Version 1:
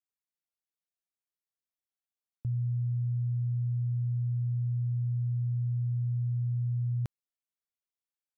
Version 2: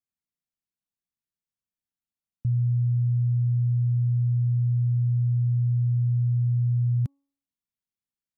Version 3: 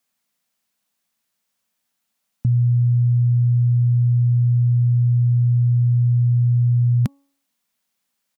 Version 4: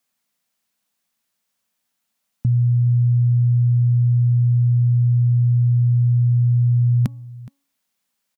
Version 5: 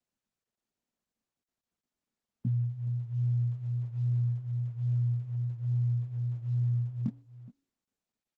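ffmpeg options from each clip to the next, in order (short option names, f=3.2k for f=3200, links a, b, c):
-af "lowshelf=f=320:t=q:w=1.5:g=10,bandreject=f=278.4:t=h:w=4,bandreject=f=556.8:t=h:w=4,bandreject=f=835.2:t=h:w=4,bandreject=f=1.1136k:t=h:w=4,volume=-4dB"
-af "firequalizer=gain_entry='entry(110,0);entry(230,12);entry(320,5);entry(550,13)':delay=0.05:min_phase=1,volume=5.5dB"
-af "aecho=1:1:420:0.106"
-af "flanger=delay=16.5:depth=6.1:speed=1.2,bandpass=f=230:t=q:w=2.7:csg=0" -ar 48000 -c:a libopus -b:a 10k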